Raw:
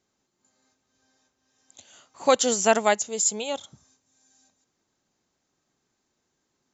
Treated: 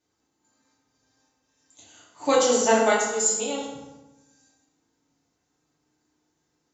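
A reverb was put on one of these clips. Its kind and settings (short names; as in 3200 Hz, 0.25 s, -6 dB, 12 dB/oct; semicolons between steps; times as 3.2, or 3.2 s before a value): FDN reverb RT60 1.1 s, low-frequency decay 1.25×, high-frequency decay 0.65×, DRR -7.5 dB; gain -7 dB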